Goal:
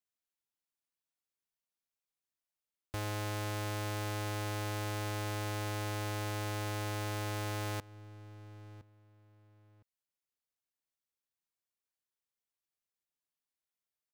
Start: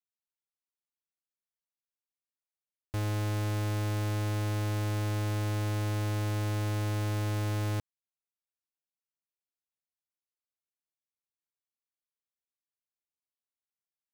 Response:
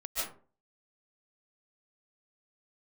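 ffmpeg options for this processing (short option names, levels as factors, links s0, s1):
-filter_complex "[0:a]asplit=2[s0][s1];[s1]adelay=1012,lowpass=f=3300:p=1,volume=0.0944,asplit=2[s2][s3];[s3]adelay=1012,lowpass=f=3300:p=1,volume=0.23[s4];[s0][s2][s4]amix=inputs=3:normalize=0,acrossover=split=430[s5][s6];[s5]acompressor=threshold=0.01:ratio=6[s7];[s7][s6]amix=inputs=2:normalize=0"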